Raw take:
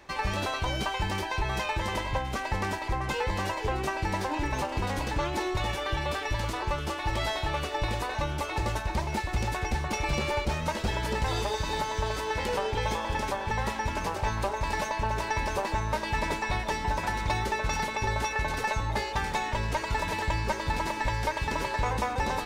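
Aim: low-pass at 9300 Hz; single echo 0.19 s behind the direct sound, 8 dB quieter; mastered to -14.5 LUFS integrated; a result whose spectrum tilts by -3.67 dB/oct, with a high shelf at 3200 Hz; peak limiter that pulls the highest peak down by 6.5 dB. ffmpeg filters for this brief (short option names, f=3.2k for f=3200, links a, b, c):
-af "lowpass=9.3k,highshelf=f=3.2k:g=6.5,alimiter=limit=-22.5dB:level=0:latency=1,aecho=1:1:190:0.398,volume=16.5dB"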